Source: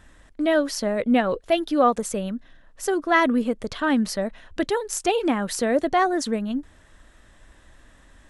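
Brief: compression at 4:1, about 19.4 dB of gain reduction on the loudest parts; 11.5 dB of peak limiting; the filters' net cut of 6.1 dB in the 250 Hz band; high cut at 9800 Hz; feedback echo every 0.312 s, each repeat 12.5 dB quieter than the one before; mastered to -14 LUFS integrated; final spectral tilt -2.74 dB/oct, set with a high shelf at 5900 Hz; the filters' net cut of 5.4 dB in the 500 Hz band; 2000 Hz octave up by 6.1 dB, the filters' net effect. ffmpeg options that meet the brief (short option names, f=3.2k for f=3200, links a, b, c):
-af "lowpass=9.8k,equalizer=f=250:t=o:g=-5.5,equalizer=f=500:t=o:g=-6.5,equalizer=f=2k:t=o:g=7,highshelf=f=5.9k:g=6,acompressor=threshold=-34dB:ratio=4,alimiter=level_in=3dB:limit=-24dB:level=0:latency=1,volume=-3dB,aecho=1:1:312|624|936:0.237|0.0569|0.0137,volume=23.5dB"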